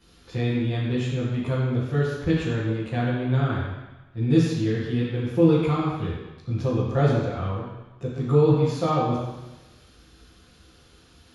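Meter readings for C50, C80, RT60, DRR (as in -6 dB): -0.5 dB, 1.5 dB, 1.1 s, -9.5 dB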